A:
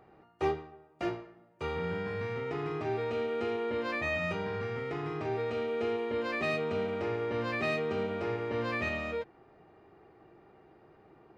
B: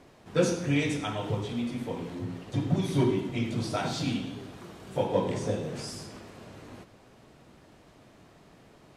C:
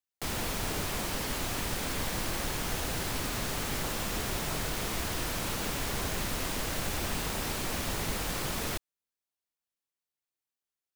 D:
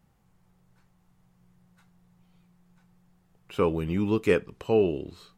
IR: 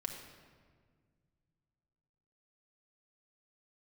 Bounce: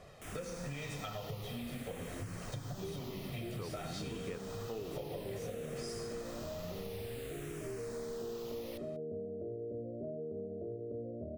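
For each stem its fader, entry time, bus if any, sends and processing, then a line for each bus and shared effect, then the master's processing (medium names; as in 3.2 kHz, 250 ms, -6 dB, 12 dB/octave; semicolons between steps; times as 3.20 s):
-15.5 dB, 2.40 s, no send, steep low-pass 670 Hz 96 dB/octave; level rider gain up to 11 dB
+3.0 dB, 0.00 s, no send, comb 1.6 ms, depth 68%; compression, threshold -33 dBFS, peak gain reduction 15.5 dB; flange 0.41 Hz, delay 1.7 ms, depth 4.9 ms, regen -68%
-11.5 dB, 0.00 s, no send, barber-pole phaser -0.55 Hz
-14.5 dB, 0.00 s, no send, none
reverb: none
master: compression 4:1, threshold -39 dBFS, peak gain reduction 9 dB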